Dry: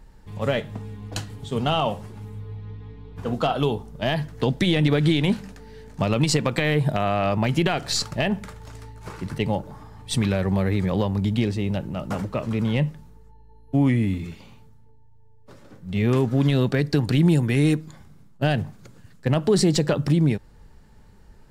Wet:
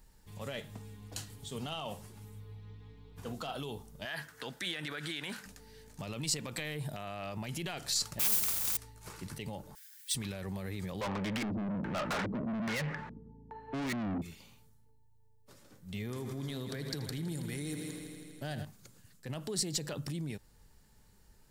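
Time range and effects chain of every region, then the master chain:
0:04.05–0:05.46: high-pass filter 420 Hz 6 dB per octave + parametric band 1,500 Hz +13.5 dB 0.82 octaves
0:08.19–0:08.77: lower of the sound and its delayed copy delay 0.83 ms + noise that follows the level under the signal 12 dB + every bin compressed towards the loudest bin 2 to 1
0:09.75–0:10.15: noise that follows the level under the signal 17 dB + linear-phase brick-wall high-pass 1,400 Hz + comb filter 6.2 ms, depth 46%
0:11.01–0:14.22: auto-filter low-pass square 1.2 Hz 240–1,800 Hz + mid-hump overdrive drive 33 dB, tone 2,800 Hz, clips at −7.5 dBFS
0:15.99–0:18.65: parametric band 2,700 Hz −12 dB 0.22 octaves + echo machine with several playback heads 81 ms, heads first and second, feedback 72%, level −14.5 dB
whole clip: brickwall limiter −18.5 dBFS; first-order pre-emphasis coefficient 0.8; level +1 dB

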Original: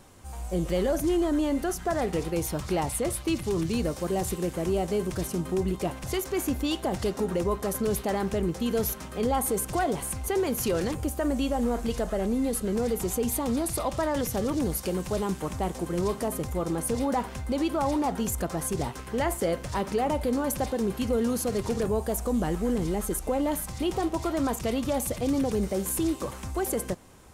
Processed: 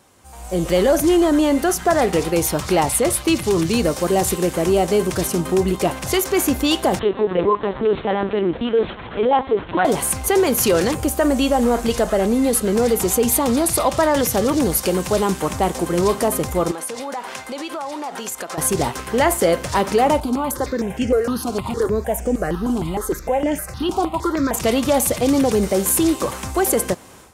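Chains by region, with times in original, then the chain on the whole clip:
0:06.99–0:09.85: notch comb filter 670 Hz + linear-prediction vocoder at 8 kHz pitch kept
0:16.71–0:18.58: meter weighting curve A + downward compressor, threshold −36 dBFS
0:20.20–0:24.54: high-shelf EQ 4,600 Hz −7.5 dB + step-sequenced phaser 6.5 Hz 510–4,000 Hz
whole clip: high-pass filter 45 Hz; low-shelf EQ 250 Hz −7.5 dB; automatic gain control gain up to 11.5 dB; level +1 dB

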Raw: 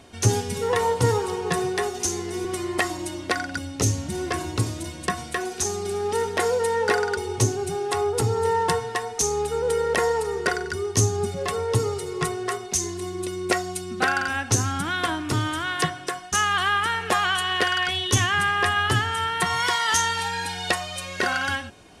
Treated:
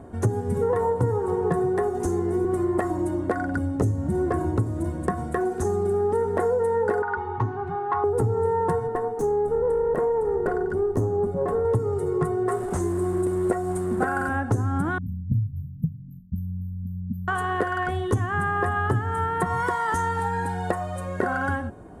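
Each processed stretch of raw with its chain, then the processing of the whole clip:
0:07.02–0:08.04: low-pass filter 3,500 Hz 24 dB per octave + low shelf with overshoot 730 Hz −9 dB, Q 3
0:08.87–0:11.65: high-pass filter 320 Hz 6 dB per octave + tilt shelving filter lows +6 dB, about 900 Hz + tube saturation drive 20 dB, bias 0.5
0:12.48–0:14.29: linear delta modulator 64 kbit/s, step −29.5 dBFS + parametric band 8,600 Hz +6.5 dB 0.36 octaves
0:14.98–0:17.28: linear-phase brick-wall band-stop 250–12,000 Hz + multiband delay without the direct sound lows, highs 30 ms, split 610 Hz
whole clip: tilt shelving filter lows +9 dB, about 1,400 Hz; downward compressor 6 to 1, threshold −20 dBFS; flat-topped bell 3,700 Hz −13.5 dB

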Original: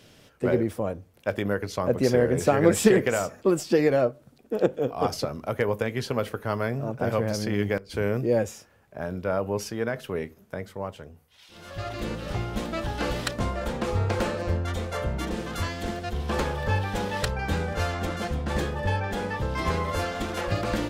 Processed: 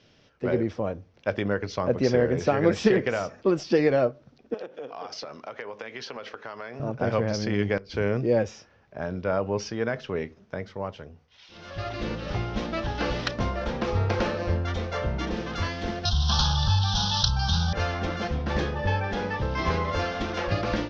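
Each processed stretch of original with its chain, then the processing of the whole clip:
0:04.54–0:06.80: meter weighting curve A + downward compressor 8 to 1, threshold −33 dBFS
0:16.05–0:17.73: leveller curve on the samples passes 1 + drawn EQ curve 160 Hz 0 dB, 320 Hz −25 dB, 510 Hz −25 dB, 770 Hz −5 dB, 1,500 Hz −5 dB, 2,100 Hz −30 dB, 3,300 Hz +9 dB, 5,800 Hz +11 dB, 9,100 Hz −26 dB + envelope flattener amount 50%
whole clip: elliptic low-pass filter 5,800 Hz, stop band 50 dB; automatic gain control gain up to 6.5 dB; level −5 dB

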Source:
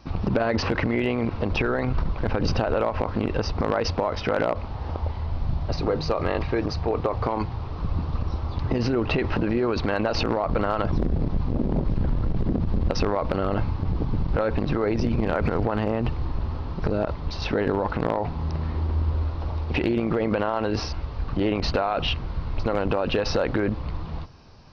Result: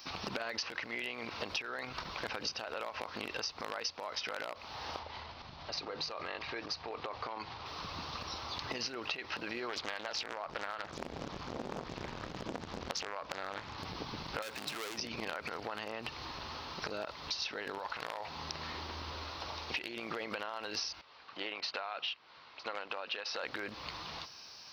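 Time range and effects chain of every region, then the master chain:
0:04.99–0:07.66: downward compressor 5 to 1, threshold −26 dBFS + high-frequency loss of the air 120 metres
0:09.69–0:13.78: high-shelf EQ 4,300 Hz −8.5 dB + highs frequency-modulated by the lows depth 0.87 ms
0:14.42–0:14.98: high-pass filter 87 Hz + hard clipping −26.5 dBFS
0:17.78–0:18.29: parametric band 250 Hz −10 dB 1.7 octaves + flutter between parallel walls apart 11.4 metres, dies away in 0.32 s
0:21.01–0:23.43: high-pass filter 560 Hz 6 dB per octave + high-frequency loss of the air 170 metres + expander for the loud parts, over −42 dBFS
whole clip: first difference; downward compressor 10 to 1, threshold −49 dBFS; level +14 dB

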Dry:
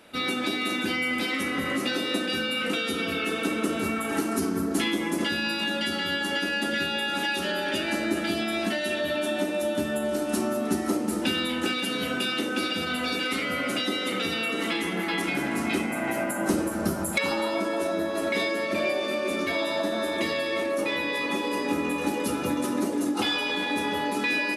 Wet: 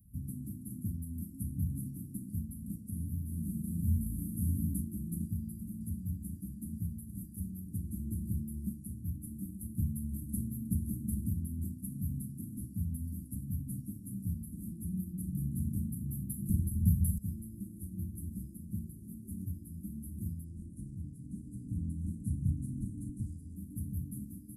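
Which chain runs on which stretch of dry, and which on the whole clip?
0:02.90–0:04.74: flutter between parallel walls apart 6.1 metres, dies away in 0.88 s + micro pitch shift up and down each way 59 cents
0:20.44–0:23.56: gain into a clipping stage and back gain 21.5 dB + Butterworth low-pass 9,500 Hz
whole clip: inverse Chebyshev band-stop filter 590–3,900 Hz, stop band 70 dB; parametric band 69 Hz +14 dB 2.9 octaves

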